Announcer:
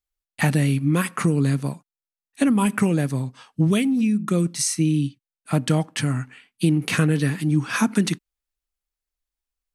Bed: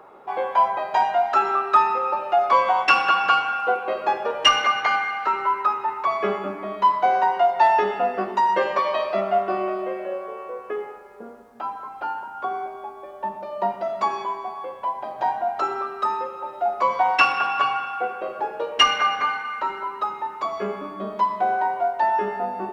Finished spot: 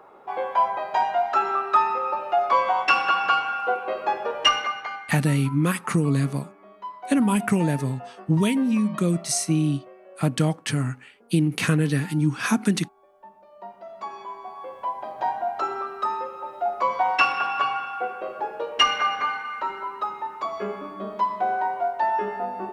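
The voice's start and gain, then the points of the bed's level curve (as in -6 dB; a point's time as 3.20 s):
4.70 s, -1.5 dB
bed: 4.47 s -2.5 dB
5.20 s -18.5 dB
13.51 s -18.5 dB
14.80 s -2.5 dB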